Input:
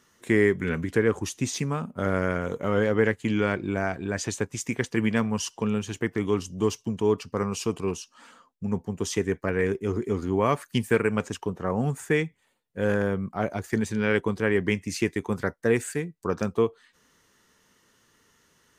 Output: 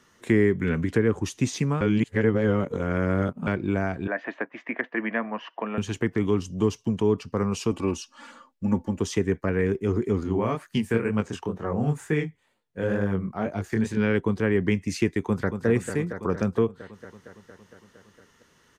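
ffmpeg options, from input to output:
-filter_complex "[0:a]asettb=1/sr,asplit=3[a][b][c];[a]atrim=end=4.074[d];[b]atrim=start=4.07:end=5.78,asetpts=PTS-STARTPTS,afade=t=in:d=0.004:c=qsin,afade=t=out:st=1.706:d=0.004:c=qsin,highpass=f=290:w=0.5412,highpass=f=290:w=1.3066,equalizer=f=410:t=q:w=4:g=-9,equalizer=f=650:t=q:w=4:g=10,equalizer=f=1.1k:t=q:w=4:g=3,equalizer=f=1.8k:t=q:w=4:g=8,lowpass=f=2.5k:w=0.5412,lowpass=f=2.5k:w=1.3066[e];[c]atrim=start=5.776[f];[d][e]acrossfade=d=0.004:c1=hsin:c2=qsin[g];[g][f]acrossfade=d=0.004:c1=qsin:c2=hsin,asettb=1/sr,asplit=3[h][i][j];[h]atrim=end=7.714[k];[i]atrim=start=7.71:end=9,asetpts=PTS-STARTPTS,afade=t=in:d=0.004:c=qsin,afade=t=out:st=1.286:d=0.004:c=qsin,aecho=1:1:3.5:0.75,atrim=end_sample=56889[l];[j]atrim=start=8.996[m];[k][l]acrossfade=d=0.004:c1=hsin:c2=qsin[n];[n][m]acrossfade=d=0.004:c1=qsin:c2=hsin,asettb=1/sr,asplit=3[o][p][q];[o]atrim=end=10.234[r];[p]atrim=start=10.23:end=13.97,asetpts=PTS-STARTPTS,afade=t=in:d=0.004:c=qsin,afade=t=out:st=3.736:d=0.004:c=qsin,flanger=delay=19:depth=7.7:speed=2.1[s];[q]atrim=start=13.966[t];[r][s]acrossfade=d=0.004:c1=hsin:c2=qsin[u];[u][t]acrossfade=d=0.004:c1=qsin:c2=hsin,asplit=2[v][w];[w]afade=t=in:st=15.2:d=0.01,afade=t=out:st=15.66:d=0.01,aecho=0:1:230|460|690|920|1150|1380|1610|1840|2070|2300|2530|2760:0.421697|0.316272|0.237204|0.177903|0.133427|0.100071|0.0750529|0.0562897|0.0422173|0.0316629|0.0237472|0.0178104[x];[v][x]amix=inputs=2:normalize=0,asplit=3[y][z][aa];[y]atrim=end=1.812[ab];[z]atrim=start=1.808:end=3.472,asetpts=PTS-STARTPTS,areverse[ac];[aa]atrim=start=3.468[ad];[ab][ac]acrossfade=d=0.004:c1=hsin:c2=hsin[ae];[ae][ad]acrossfade=d=0.004:c1=hsin:c2=hsin,acrossover=split=330[af][ag];[ag]acompressor=threshold=-34dB:ratio=2[ah];[af][ah]amix=inputs=2:normalize=0,highshelf=f=6.9k:g=-9,volume=4dB"

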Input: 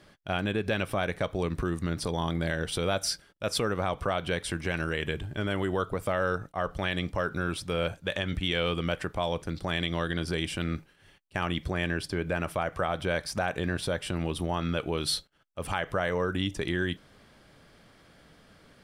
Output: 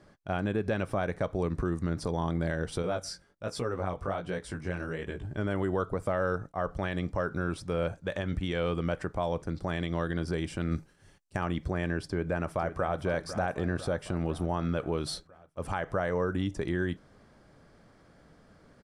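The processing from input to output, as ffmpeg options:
-filter_complex "[0:a]asettb=1/sr,asplit=3[a][b][c];[a]atrim=end=2.824[d];[b]atrim=start=2.82:end=5.25,asetpts=PTS-STARTPTS,afade=t=in:d=0.004:c=qsin,afade=t=out:st=2.426:d=0.004:c=qsin,flanger=delay=16:depth=6.3:speed=1.3[e];[c]atrim=start=5.246[f];[d][e]acrossfade=d=0.004:c1=hsin:c2=qsin[g];[g][f]acrossfade=d=0.004:c1=qsin:c2=hsin,asettb=1/sr,asplit=3[h][i][j];[h]atrim=end=10.714[k];[i]atrim=start=10.71:end=11.37,asetpts=PTS-STARTPTS,afade=t=in:d=0.004:c=qsin,afade=t=out:st=0.656:d=0.004:c=qsin,bass=f=250:g=3,treble=f=4k:g=10[l];[j]atrim=start=11.366[m];[k][l]acrossfade=d=0.004:c1=hsin:c2=qsin[n];[n][m]acrossfade=d=0.004:c1=qsin:c2=hsin,asplit=2[o][p];[p]afade=t=in:st=12.07:d=0.01,afade=t=out:st=12.99:d=0.01,aecho=0:1:500|1000|1500|2000|2500|3000|3500|4000:0.251189|0.163273|0.106127|0.0689827|0.0448387|0.0291452|0.0189444|0.0123138[q];[o][q]amix=inputs=2:normalize=0,lowpass=7.2k,equalizer=f=3.1k:t=o:w=1.4:g=-11.5"

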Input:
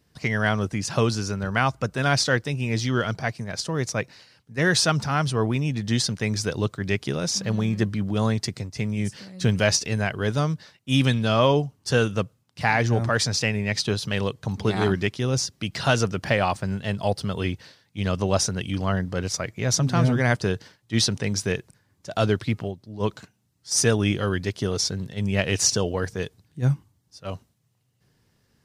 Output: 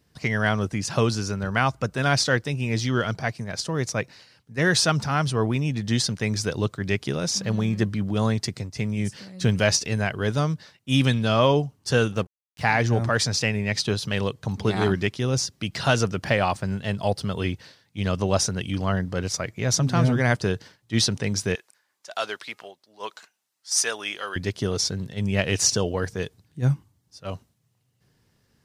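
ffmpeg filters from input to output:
-filter_complex "[0:a]asettb=1/sr,asplit=3[a][b][c];[a]atrim=end=12.124[d];[b]atrim=start=12.12:end=12.61,asetpts=PTS-STARTPTS,afade=t=in:d=0.004:c=qsin,afade=t=out:st=0.486:d=0.004:c=qsin,aeval=exprs='sgn(val(0))*max(abs(val(0))-0.00891,0)':c=same[e];[c]atrim=start=12.606[f];[d][e]acrossfade=d=0.004:c1=hsin:c2=qsin[g];[g][f]acrossfade=d=0.004:c1=qsin:c2=hsin,asettb=1/sr,asplit=3[h][i][j];[h]atrim=end=21.554[k];[i]atrim=start=21.55:end=24.36,asetpts=PTS-STARTPTS,afade=t=in:d=0.004:c=qsin,afade=t=out:st=2.806:d=0.004:c=qsin,highpass=820[l];[j]atrim=start=24.356[m];[k][l]acrossfade=d=0.004:c1=hsin:c2=qsin[n];[n][m]acrossfade=d=0.004:c1=qsin:c2=hsin"

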